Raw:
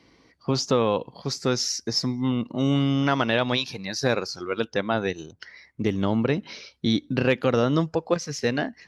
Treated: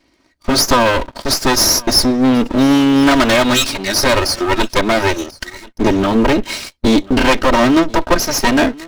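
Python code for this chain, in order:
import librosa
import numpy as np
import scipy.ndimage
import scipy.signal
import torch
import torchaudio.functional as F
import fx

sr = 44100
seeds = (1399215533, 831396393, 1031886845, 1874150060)

p1 = fx.lower_of_two(x, sr, delay_ms=3.2)
p2 = fx.leveller(p1, sr, passes=3)
p3 = p2 + fx.echo_single(p2, sr, ms=1037, db=-22.5, dry=0)
y = F.gain(torch.from_numpy(p3), 7.0).numpy()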